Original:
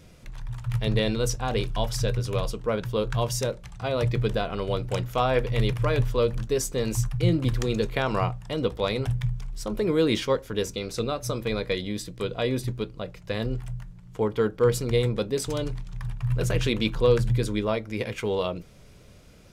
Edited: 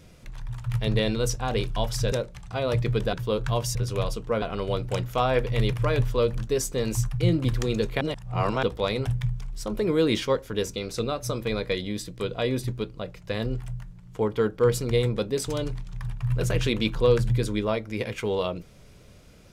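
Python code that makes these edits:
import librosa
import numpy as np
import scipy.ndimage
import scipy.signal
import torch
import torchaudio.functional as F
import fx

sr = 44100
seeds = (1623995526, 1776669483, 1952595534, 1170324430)

y = fx.edit(x, sr, fx.swap(start_s=2.12, length_s=0.67, other_s=3.41, other_length_s=1.01),
    fx.reverse_span(start_s=8.01, length_s=0.62), tone=tone)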